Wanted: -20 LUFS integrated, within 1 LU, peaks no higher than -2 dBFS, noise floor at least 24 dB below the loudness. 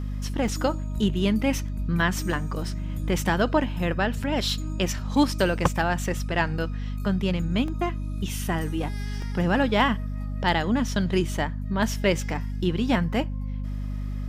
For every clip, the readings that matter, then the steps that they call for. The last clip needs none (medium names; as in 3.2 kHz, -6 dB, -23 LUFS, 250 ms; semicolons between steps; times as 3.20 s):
dropouts 4; longest dropout 2.0 ms; hum 50 Hz; highest harmonic 250 Hz; hum level -27 dBFS; loudness -26.0 LUFS; peak level -7.5 dBFS; loudness target -20.0 LUFS
-> interpolate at 0.48/2.01/7.68/9.22 s, 2 ms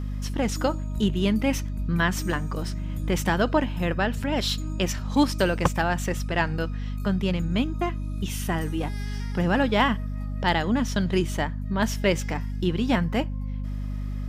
dropouts 0; hum 50 Hz; highest harmonic 250 Hz; hum level -27 dBFS
-> de-hum 50 Hz, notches 5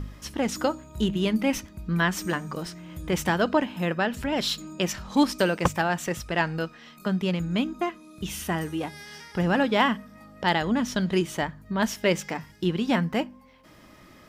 hum not found; loudness -27.0 LUFS; peak level -8.0 dBFS; loudness target -20.0 LUFS
-> trim +7 dB; peak limiter -2 dBFS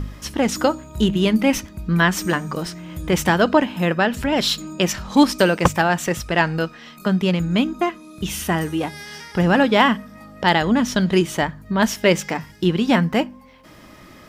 loudness -20.0 LUFS; peak level -2.0 dBFS; noise floor -45 dBFS